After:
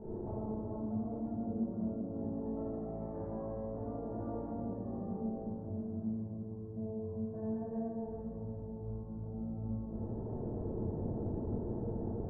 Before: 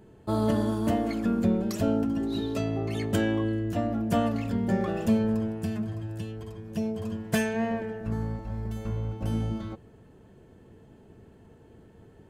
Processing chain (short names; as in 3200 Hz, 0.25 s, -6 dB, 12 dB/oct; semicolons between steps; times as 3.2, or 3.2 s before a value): 2.08–4.41 spectral limiter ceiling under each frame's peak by 16 dB; inverse Chebyshev low-pass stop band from 3000 Hz, stop band 60 dB; limiter -22.5 dBFS, peak gain reduction 9 dB; flipped gate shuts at -39 dBFS, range -24 dB; reverb RT60 3.0 s, pre-delay 4 ms, DRR -12 dB; gain +2 dB